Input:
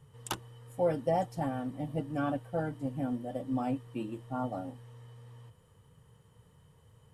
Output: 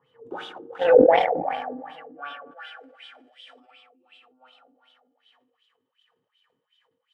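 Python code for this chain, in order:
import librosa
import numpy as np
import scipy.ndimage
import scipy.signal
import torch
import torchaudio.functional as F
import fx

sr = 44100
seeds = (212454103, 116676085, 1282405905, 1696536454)

y = fx.reverse_delay(x, sr, ms=148, wet_db=-6.5)
y = fx.high_shelf(y, sr, hz=8500.0, db=7.5)
y = y + 10.0 ** (-11.0 / 20.0) * np.pad(y, (int(442 * sr / 1000.0), 0))[:len(y)]
y = fx.rev_fdn(y, sr, rt60_s=0.96, lf_ratio=1.3, hf_ratio=0.95, size_ms=12.0, drr_db=-1.5)
y = fx.filter_sweep_highpass(y, sr, from_hz=320.0, to_hz=3100.0, start_s=0.33, end_s=3.38, q=1.3)
y = fx.weighting(y, sr, curve='ITU-R 468', at=(2.51, 3.71))
y = fx.cheby_harmonics(y, sr, harmonics=(7,), levels_db=(-22,), full_scale_db=-10.5)
y = fx.filter_lfo_lowpass(y, sr, shape='sine', hz=2.7, low_hz=280.0, high_hz=3500.0, q=5.2)
y = fx.sustainer(y, sr, db_per_s=56.0)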